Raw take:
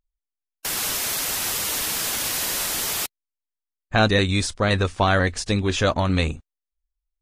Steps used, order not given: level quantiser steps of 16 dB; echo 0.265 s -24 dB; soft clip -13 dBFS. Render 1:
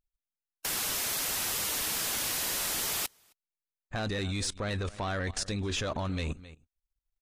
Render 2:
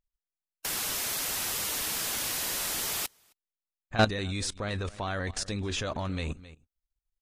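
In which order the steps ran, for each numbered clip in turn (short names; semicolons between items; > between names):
echo > soft clip > level quantiser; echo > level quantiser > soft clip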